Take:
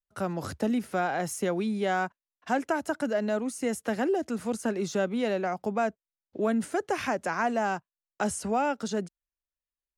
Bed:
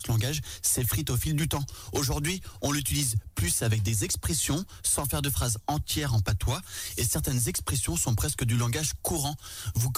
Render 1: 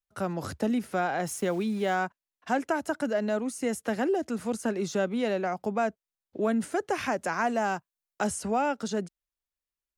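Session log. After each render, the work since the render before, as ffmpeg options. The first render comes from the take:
-filter_complex "[0:a]asettb=1/sr,asplit=3[s0][s1][s2];[s0]atrim=end=1.274[s3];[s1]atrim=start=1.27:end=1.95,asetpts=PTS-STARTPTS,afade=t=in:d=0.004:c=qsin,afade=t=out:st=0.676:d=0.004:c=qsin,aeval=exprs='val(0)*gte(abs(val(0)),0.00596)':c=same[s4];[s2]atrim=start=1.946[s5];[s3][s4]acrossfade=d=0.004:c1=hsin:c2=qsin[s6];[s6][s5]acrossfade=d=0.004:c1=qsin:c2=hsin,asettb=1/sr,asplit=3[s7][s8][s9];[s7]atrim=end=7.124[s10];[s8]atrim=start=7.12:end=8.27,asetpts=PTS-STARTPTS,afade=t=in:d=0.004:c=qsin,afade=t=out:st=1.146:d=0.004:c=qsin,highshelf=f=7500:g=5.5[s11];[s9]atrim=start=8.266[s12];[s10][s11]acrossfade=d=0.004:c1=hsin:c2=qsin[s13];[s13][s12]acrossfade=d=0.004:c1=qsin:c2=hsin"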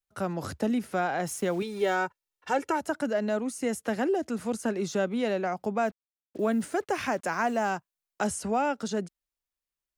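-filter_complex "[0:a]asettb=1/sr,asplit=3[s0][s1][s2];[s0]atrim=end=1.624[s3];[s1]atrim=start=1.62:end=2.81,asetpts=PTS-STARTPTS,afade=t=in:d=0.004:c=qsin,afade=t=out:st=1.186:d=0.004:c=qsin,aecho=1:1:2.2:0.72,atrim=end_sample=52479[s4];[s2]atrim=start=2.806[s5];[s3][s4]acrossfade=d=0.004:c1=hsin:c2=qsin[s6];[s6][s5]acrossfade=d=0.004:c1=qsin:c2=hsin,asettb=1/sr,asplit=3[s7][s8][s9];[s7]atrim=end=5.854[s10];[s8]atrim=start=5.85:end=7.7,asetpts=PTS-STARTPTS,afade=t=in:d=0.004:c=qsin,afade=t=out:st=1.846:d=0.004:c=qsin,acrusher=bits=8:mix=0:aa=0.5[s11];[s9]atrim=start=7.696[s12];[s10][s11]acrossfade=d=0.004:c1=hsin:c2=qsin[s13];[s13][s12]acrossfade=d=0.004:c1=qsin:c2=hsin"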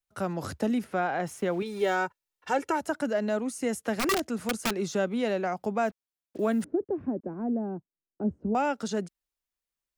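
-filter_complex "[0:a]asettb=1/sr,asplit=3[s0][s1][s2];[s0]atrim=end=0.844[s3];[s1]atrim=start=0.84:end=1.66,asetpts=PTS-STARTPTS,afade=t=in:d=0.004:c=qsin,afade=t=out:st=0.816:d=0.004:c=qsin,bass=f=250:g=-1,treble=f=4000:g=-9[s4];[s2]atrim=start=1.656[s5];[s3][s4]acrossfade=d=0.004:c1=hsin:c2=qsin[s6];[s6][s5]acrossfade=d=0.004:c1=qsin:c2=hsin,asettb=1/sr,asplit=3[s7][s8][s9];[s7]atrim=end=3.964[s10];[s8]atrim=start=3.96:end=4.85,asetpts=PTS-STARTPTS,afade=t=in:d=0.004:c=qsin,afade=t=out:st=0.886:d=0.004:c=qsin,aeval=exprs='(mod(11.2*val(0)+1,2)-1)/11.2':c=same[s11];[s9]atrim=start=4.846[s12];[s10][s11]acrossfade=d=0.004:c1=hsin:c2=qsin[s13];[s13][s12]acrossfade=d=0.004:c1=qsin:c2=hsin,asettb=1/sr,asplit=3[s14][s15][s16];[s14]atrim=end=6.644[s17];[s15]atrim=start=6.64:end=8.55,asetpts=PTS-STARTPTS,afade=t=in:d=0.004:c=qsin,afade=t=out:st=1.906:d=0.004:c=qsin,lowpass=f=320:t=q:w=1.9[s18];[s16]atrim=start=8.546[s19];[s17][s18]acrossfade=d=0.004:c1=hsin:c2=qsin[s20];[s20][s19]acrossfade=d=0.004:c1=qsin:c2=hsin"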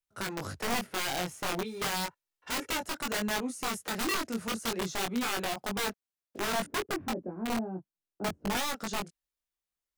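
-af "aeval=exprs='(mod(14.1*val(0)+1,2)-1)/14.1':c=same,flanger=delay=19.5:depth=2.7:speed=0.34"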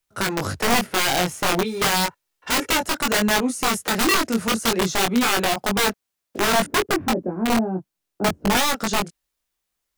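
-af "volume=3.98"

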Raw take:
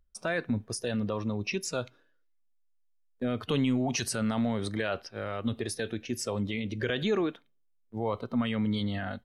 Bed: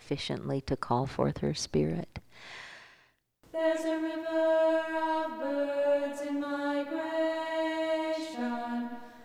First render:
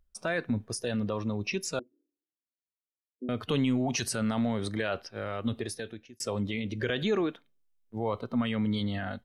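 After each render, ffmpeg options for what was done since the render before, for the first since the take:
-filter_complex "[0:a]asettb=1/sr,asplit=3[s0][s1][s2];[s0]atrim=end=1.794[s3];[s1]atrim=start=1.79:end=3.29,asetpts=PTS-STARTPTS,afade=t=in:d=0.004:c=qsin,afade=t=out:st=1.496:d=0.004:c=qsin,asuperpass=centerf=310:order=4:qfactor=2.8[s4];[s2]atrim=start=3.286[s5];[s3][s4]acrossfade=d=0.004:c1=hsin:c2=qsin[s6];[s6][s5]acrossfade=d=0.004:c1=qsin:c2=hsin,asplit=2[s7][s8];[s7]atrim=end=6.2,asetpts=PTS-STARTPTS,afade=t=out:st=5.55:d=0.65[s9];[s8]atrim=start=6.2,asetpts=PTS-STARTPTS,afade=t=in:d=0.004:c=hsin[s10];[s9][s10]concat=n=2:v=0:a=1"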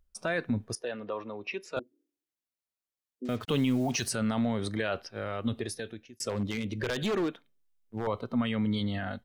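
-filter_complex "[0:a]asettb=1/sr,asplit=3[s0][s1][s2];[s0]atrim=end=0.754[s3];[s1]atrim=start=0.75:end=1.77,asetpts=PTS-STARTPTS,afade=t=in:d=0.004:c=qsin,afade=t=out:st=1.016:d=0.004:c=qsin,acrossover=split=330 3200:gain=0.1 1 0.112[s4][s5][s6];[s4][s5][s6]amix=inputs=3:normalize=0[s7];[s2]atrim=start=1.766[s8];[s3][s7]acrossfade=d=0.004:c1=hsin:c2=qsin[s9];[s9][s8]acrossfade=d=0.004:c1=qsin:c2=hsin,asettb=1/sr,asplit=3[s10][s11][s12];[s10]atrim=end=3.254[s13];[s11]atrim=start=3.25:end=4.12,asetpts=PTS-STARTPTS,afade=t=in:d=0.004:c=qsin,afade=t=out:st=0.866:d=0.004:c=qsin,acrusher=bits=7:mix=0:aa=0.5[s14];[s12]atrim=start=4.116[s15];[s13][s14]acrossfade=d=0.004:c1=hsin:c2=qsin[s16];[s16][s15]acrossfade=d=0.004:c1=qsin:c2=hsin,asettb=1/sr,asplit=3[s17][s18][s19];[s17]atrim=end=6.294[s20];[s18]atrim=start=6.29:end=8.07,asetpts=PTS-STARTPTS,afade=t=in:d=0.004:c=qsin,afade=t=out:st=1.776:d=0.004:c=qsin,aeval=exprs='0.0631*(abs(mod(val(0)/0.0631+3,4)-2)-1)':c=same[s21];[s19]atrim=start=8.066[s22];[s20][s21]acrossfade=d=0.004:c1=hsin:c2=qsin[s23];[s23][s22]acrossfade=d=0.004:c1=qsin:c2=hsin"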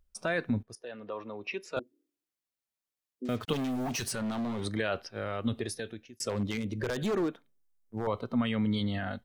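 -filter_complex "[0:a]asettb=1/sr,asplit=3[s0][s1][s2];[s0]atrim=end=3.534[s3];[s1]atrim=start=3.53:end=4.65,asetpts=PTS-STARTPTS,afade=t=in:d=0.004:c=qsin,afade=t=out:st=1.116:d=0.004:c=qsin,asoftclip=type=hard:threshold=0.0316[s4];[s2]atrim=start=4.646[s5];[s3][s4]acrossfade=d=0.004:c1=hsin:c2=qsin[s6];[s6][s5]acrossfade=d=0.004:c1=qsin:c2=hsin,asettb=1/sr,asplit=3[s7][s8][s9];[s7]atrim=end=6.574[s10];[s8]atrim=start=6.57:end=8.08,asetpts=PTS-STARTPTS,afade=t=in:d=0.004:c=qsin,afade=t=out:st=1.506:d=0.004:c=qsin,equalizer=f=3000:t=o:w=1.4:g=-7[s11];[s9]atrim=start=8.076[s12];[s10][s11]acrossfade=d=0.004:c1=hsin:c2=qsin[s13];[s13][s12]acrossfade=d=0.004:c1=qsin:c2=hsin,asplit=2[s14][s15];[s14]atrim=end=0.63,asetpts=PTS-STARTPTS,afade=t=out:st=0.626:d=0.004:c=hsin:silence=0.141254[s16];[s15]atrim=start=0.63,asetpts=PTS-STARTPTS,afade=t=in:d=1.11:c=qsin:silence=0.141254[s17];[s16][s17]concat=n=2:v=0:a=1"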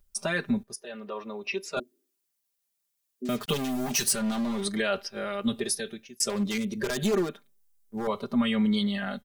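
-af "highshelf=f=4800:g=11.5,aecho=1:1:5:0.92"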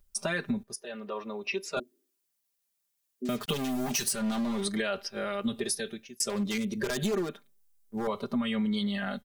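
-af "acompressor=threshold=0.0501:ratio=6"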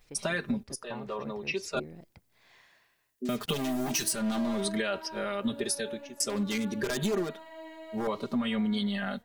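-filter_complex "[1:a]volume=0.188[s0];[0:a][s0]amix=inputs=2:normalize=0"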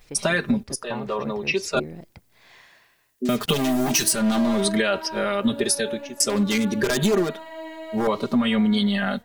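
-af "volume=2.82"

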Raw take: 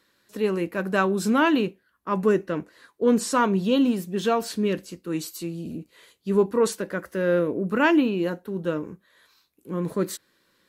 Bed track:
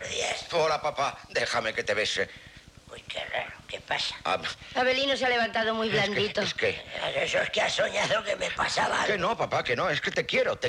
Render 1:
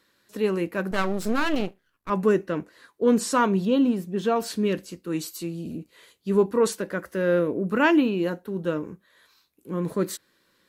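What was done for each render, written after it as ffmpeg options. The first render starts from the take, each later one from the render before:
-filter_complex "[0:a]asettb=1/sr,asplit=3[s0][s1][s2];[s0]atrim=end=0.914[s3];[s1]atrim=start=0.91:end=2.1,asetpts=PTS-STARTPTS,afade=t=in:d=0.004:c=qsin,afade=t=out:st=1.186:d=0.004:c=qsin,aeval=exprs='max(val(0),0)':c=same[s4];[s2]atrim=start=2.096[s5];[s3][s4]acrossfade=d=0.004:c1=hsin:c2=qsin[s6];[s6][s5]acrossfade=d=0.004:c1=qsin:c2=hsin,asettb=1/sr,asplit=3[s7][s8][s9];[s7]atrim=end=3.654[s10];[s8]atrim=start=3.65:end=4.36,asetpts=PTS-STARTPTS,afade=t=in:d=0.004:c=qsin,afade=t=out:st=0.706:d=0.004:c=qsin,highshelf=f=2000:g=-8[s11];[s9]atrim=start=4.356[s12];[s10][s11]acrossfade=d=0.004:c1=hsin:c2=qsin[s13];[s13][s12]acrossfade=d=0.004:c1=qsin:c2=hsin"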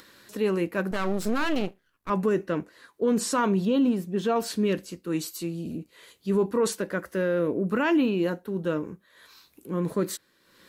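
-af "alimiter=limit=0.158:level=0:latency=1:release=22,acompressor=mode=upward:threshold=0.00794:ratio=2.5"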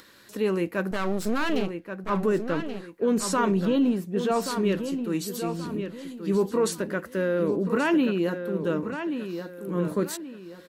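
-filter_complex "[0:a]asplit=2[s0][s1];[s1]adelay=1130,lowpass=f=4300:p=1,volume=0.398,asplit=2[s2][s3];[s3]adelay=1130,lowpass=f=4300:p=1,volume=0.35,asplit=2[s4][s5];[s5]adelay=1130,lowpass=f=4300:p=1,volume=0.35,asplit=2[s6][s7];[s7]adelay=1130,lowpass=f=4300:p=1,volume=0.35[s8];[s0][s2][s4][s6][s8]amix=inputs=5:normalize=0"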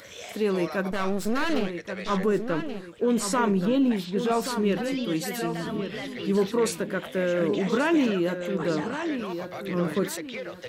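-filter_complex "[1:a]volume=0.266[s0];[0:a][s0]amix=inputs=2:normalize=0"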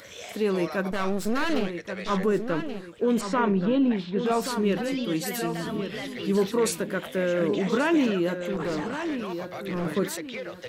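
-filter_complex "[0:a]asettb=1/sr,asplit=3[s0][s1][s2];[s0]atrim=end=3.214[s3];[s1]atrim=start=3.21:end=4.26,asetpts=PTS-STARTPTS,afade=t=in:d=0.004:c=qsin,afade=t=out:st=1.046:d=0.004:c=qsin,lowpass=3600[s4];[s2]atrim=start=4.256[s5];[s3][s4]acrossfade=d=0.004:c1=hsin:c2=qsin[s6];[s6][s5]acrossfade=d=0.004:c1=qsin:c2=hsin,asettb=1/sr,asplit=3[s7][s8][s9];[s7]atrim=end=5.264[s10];[s8]atrim=start=5.26:end=7.16,asetpts=PTS-STARTPTS,afade=t=in:d=0.004:c=qsin,afade=t=out:st=1.896:d=0.004:c=qsin,highshelf=f=6800:g=5[s11];[s9]atrim=start=7.156[s12];[s10][s11]acrossfade=d=0.004:c1=hsin:c2=qsin[s13];[s13][s12]acrossfade=d=0.004:c1=qsin:c2=hsin,asettb=1/sr,asplit=3[s14][s15][s16];[s14]atrim=end=8.524[s17];[s15]atrim=start=8.52:end=9.86,asetpts=PTS-STARTPTS,afade=t=in:d=0.004:c=qsin,afade=t=out:st=1.336:d=0.004:c=qsin,asoftclip=type=hard:threshold=0.0562[s18];[s16]atrim=start=9.856[s19];[s17][s18]acrossfade=d=0.004:c1=hsin:c2=qsin[s20];[s20][s19]acrossfade=d=0.004:c1=qsin:c2=hsin"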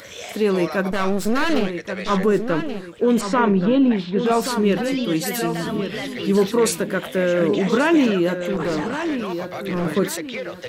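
-af "volume=2"

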